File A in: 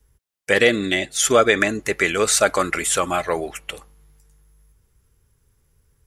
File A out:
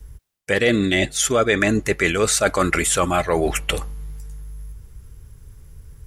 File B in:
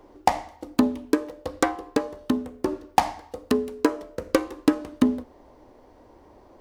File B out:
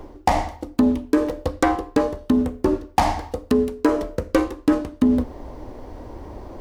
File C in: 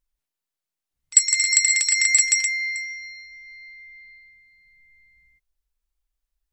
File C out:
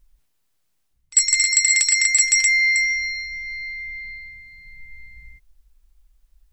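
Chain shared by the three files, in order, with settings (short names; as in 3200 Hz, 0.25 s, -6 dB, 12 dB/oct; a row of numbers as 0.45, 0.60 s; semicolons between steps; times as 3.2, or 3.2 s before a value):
low shelf 170 Hz +11.5 dB; reverse; compressor 4:1, threshold -28 dBFS; reverse; normalise peaks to -3 dBFS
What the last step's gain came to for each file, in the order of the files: +10.5, +11.0, +12.0 dB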